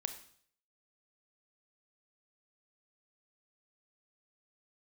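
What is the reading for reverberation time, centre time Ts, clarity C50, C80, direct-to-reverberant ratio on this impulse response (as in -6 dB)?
0.55 s, 11 ms, 10.5 dB, 13.5 dB, 8.0 dB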